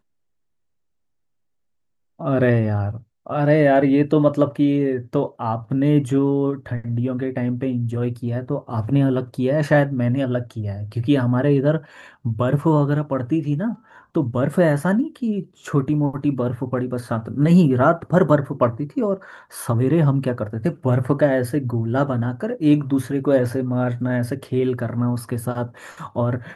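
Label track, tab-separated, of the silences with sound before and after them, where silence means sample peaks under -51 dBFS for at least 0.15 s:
3.040000	3.260000	silence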